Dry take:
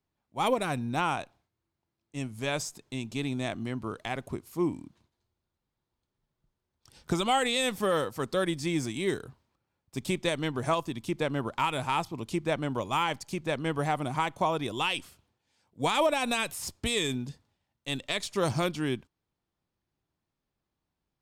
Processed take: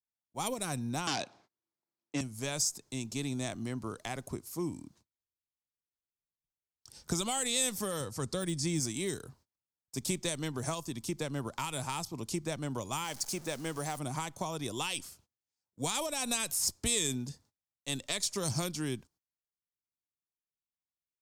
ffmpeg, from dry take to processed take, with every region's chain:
ffmpeg -i in.wav -filter_complex "[0:a]asettb=1/sr,asplit=3[link_01][link_02][link_03];[link_01]atrim=end=1.074[link_04];[link_02]atrim=start=1.07:end=2.21,asetpts=PTS-STARTPTS,afade=type=in:duration=0.004:curve=qsin,afade=type=out:start_time=1.136:duration=0.004:curve=qsin,aeval=exprs='0.141*sin(PI/2*3.98*val(0)/0.141)':channel_layout=same,highpass=250,lowpass=3500[link_05];[link_03]atrim=start=2.206[link_06];[link_04][link_05]acrossfade=duration=0.004:curve1=hsin:curve2=qsin[link_07];[link_07][link_06]acrossfade=duration=0.004:curve1=qsin:curve2=hsin,asettb=1/sr,asplit=3[link_08][link_09][link_10];[link_08]atrim=end=8.004[link_11];[link_09]atrim=start=8:end=8.8,asetpts=PTS-STARTPTS,afade=type=in:duration=0.004:curve=qsin,afade=type=out:start_time=0.796:duration=0.004:curve=qsin,lowpass=frequency=11000:width=0.5412,lowpass=frequency=11000:width=1.3066,deesser=0.85,equalizer=frequency=82:width=0.61:gain=7[link_12];[link_10]atrim=start=8.796[link_13];[link_11][link_12]acrossfade=duration=0.004:curve1=hsin:curve2=qsin[link_14];[link_14][link_13]acrossfade=duration=0.004:curve1=qsin:curve2=hsin,asettb=1/sr,asplit=3[link_15][link_16][link_17];[link_15]atrim=end=13.044[link_18];[link_16]atrim=start=13.04:end=13.99,asetpts=PTS-STARTPTS,afade=type=in:duration=0.004:curve=qsin,afade=type=out:start_time=0.946:duration=0.004:curve=qsin,aeval=exprs='val(0)+0.5*0.0075*sgn(val(0))':channel_layout=same,equalizer=frequency=61:width=0.44:gain=-10.5[link_19];[link_17]atrim=start=13.986[link_20];[link_18][link_19]acrossfade=duration=0.004:curve1=hsin:curve2=qsin[link_21];[link_21][link_20]acrossfade=duration=0.004:curve1=qsin:curve2=hsin,acrossover=split=200|3000[link_22][link_23][link_24];[link_23]acompressor=threshold=-32dB:ratio=6[link_25];[link_22][link_25][link_24]amix=inputs=3:normalize=0,highshelf=frequency=4200:width_type=q:width=1.5:gain=8,agate=range=-23dB:threshold=-59dB:ratio=16:detection=peak,volume=-2.5dB" out.wav

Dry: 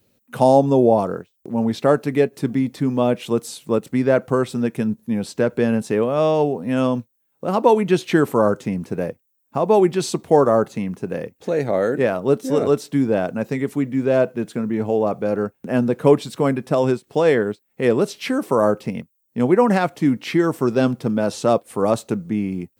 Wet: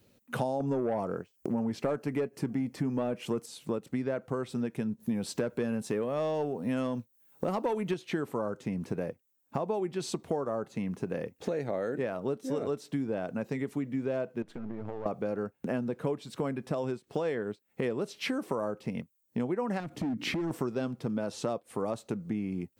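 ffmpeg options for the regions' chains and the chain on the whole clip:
ffmpeg -i in.wav -filter_complex "[0:a]asettb=1/sr,asplit=3[link_01][link_02][link_03];[link_01]atrim=end=0.604[link_04];[link_02]atrim=start=0.6:end=3.46,asetpts=PTS-STARTPTS,afade=type=in:duration=0.004:curve=qsin,afade=type=out:start_time=2.856:duration=0.004:curve=qsin,equalizer=frequency=3700:width=5.9:gain=-12,acontrast=84[link_05];[link_03]atrim=start=3.456[link_06];[link_04][link_05]acrossfade=duration=0.004:curve1=hsin:curve2=qsin[link_07];[link_07][link_06]acrossfade=duration=0.004:curve1=qsin:curve2=hsin,asettb=1/sr,asplit=3[link_08][link_09][link_10];[link_08]atrim=end=5.004[link_11];[link_09]atrim=start=5:end=7.94,asetpts=PTS-STARTPTS,afade=type=in:duration=0.004:curve=qsin,afade=type=out:start_time=2.936:duration=0.004:curve=qsin,highshelf=frequency=7500:gain=7.5,acontrast=50[link_12];[link_10]atrim=start=7.936[link_13];[link_11][link_12]acrossfade=duration=0.004:curve1=hsin:curve2=qsin[link_14];[link_14][link_13]acrossfade=duration=0.004:curve1=qsin:curve2=hsin,asettb=1/sr,asplit=3[link_15][link_16][link_17];[link_15]atrim=end=14.424[link_18];[link_16]atrim=start=14.42:end=15.06,asetpts=PTS-STARTPTS,afade=type=in:duration=0.004:curve=qsin,afade=type=out:start_time=0.636:duration=0.004:curve=qsin,aeval=exprs='if(lt(val(0),0),0.251*val(0),val(0))':channel_layout=same,lowpass=frequency=2800:poles=1,acompressor=threshold=-33dB:ratio=10:attack=3.2:release=140:knee=1:detection=peak[link_19];[link_17]atrim=start=15.056[link_20];[link_18][link_19]acrossfade=duration=0.004:curve1=hsin:curve2=qsin[link_21];[link_21][link_20]acrossfade=duration=0.004:curve1=qsin:curve2=hsin,asettb=1/sr,asplit=3[link_22][link_23][link_24];[link_22]atrim=end=19.804[link_25];[link_23]atrim=start=19.8:end=20.51,asetpts=PTS-STARTPTS,afade=type=in:duration=0.004:curve=qsin,afade=type=out:start_time=0.706:duration=0.004:curve=qsin,lowshelf=frequency=390:width_type=q:width=1.5:gain=9,acompressor=threshold=-20dB:ratio=12:attack=3.2:release=140:knee=1:detection=peak,asoftclip=type=hard:threshold=-22.5dB[link_26];[link_24]atrim=start=20.506[link_27];[link_25][link_26]acrossfade=duration=0.004:curve1=hsin:curve2=qsin[link_28];[link_28][link_27]acrossfade=duration=0.004:curve1=qsin:curve2=hsin,highshelf=frequency=9000:gain=-6,acompressor=threshold=-30dB:ratio=6" out.wav

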